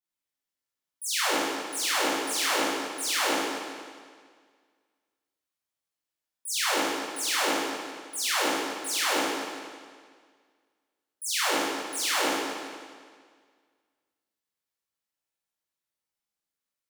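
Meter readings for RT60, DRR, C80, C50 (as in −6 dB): 1.8 s, −10.0 dB, −0.5 dB, −3.0 dB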